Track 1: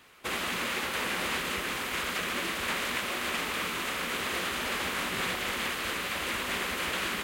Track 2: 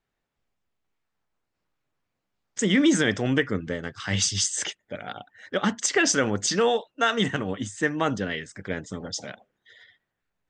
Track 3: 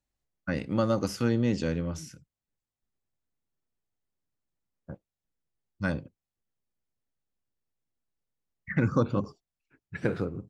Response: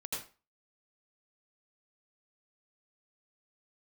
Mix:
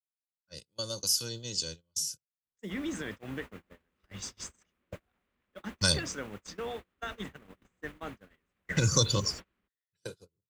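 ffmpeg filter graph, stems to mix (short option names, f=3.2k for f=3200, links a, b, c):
-filter_complex "[0:a]aemphasis=mode=reproduction:type=riaa,adelay=2450,volume=-16.5dB[a];[1:a]bandreject=f=3.1k:w=11,volume=-16dB,asplit=2[b][c];[2:a]aecho=1:1:2:0.59,adynamicequalizer=threshold=0.0141:dfrequency=510:dqfactor=2.5:tfrequency=510:tqfactor=2.5:attack=5:release=100:ratio=0.375:range=2.5:mode=cutabove:tftype=bell,aexciter=amount=12:drive=8.2:freq=3.3k,volume=1.5dB[d];[c]apad=whole_len=462807[e];[d][e]sidechaingate=range=-16dB:threshold=-60dB:ratio=16:detection=peak[f];[a][b][f]amix=inputs=3:normalize=0,agate=range=-33dB:threshold=-39dB:ratio=16:detection=peak,acrossover=split=130|3000[g][h][i];[h]acompressor=threshold=-30dB:ratio=2.5[j];[g][j][i]amix=inputs=3:normalize=0"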